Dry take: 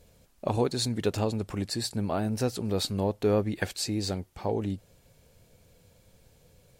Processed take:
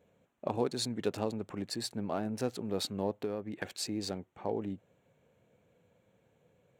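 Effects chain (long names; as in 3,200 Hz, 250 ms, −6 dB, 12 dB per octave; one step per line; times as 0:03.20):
adaptive Wiener filter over 9 samples
high-pass filter 160 Hz 12 dB per octave
0:03.13–0:03.65: downward compressor 6 to 1, threshold −28 dBFS, peak gain reduction 8.5 dB
level −4.5 dB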